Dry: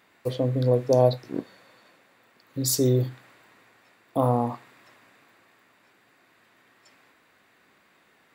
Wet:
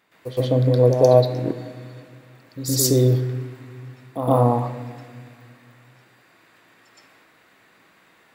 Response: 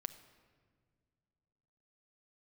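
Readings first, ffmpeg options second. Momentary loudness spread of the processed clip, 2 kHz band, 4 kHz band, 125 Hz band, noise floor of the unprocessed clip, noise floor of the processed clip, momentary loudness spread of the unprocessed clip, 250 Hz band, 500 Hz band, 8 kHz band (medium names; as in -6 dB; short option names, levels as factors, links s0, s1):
20 LU, +5.5 dB, +5.5 dB, +7.0 dB, -62 dBFS, -57 dBFS, 15 LU, +4.5 dB, +6.0 dB, +5.5 dB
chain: -filter_complex "[0:a]asplit=2[s0][s1];[1:a]atrim=start_sample=2205,adelay=117[s2];[s1][s2]afir=irnorm=-1:irlink=0,volume=3.76[s3];[s0][s3]amix=inputs=2:normalize=0,volume=0.631"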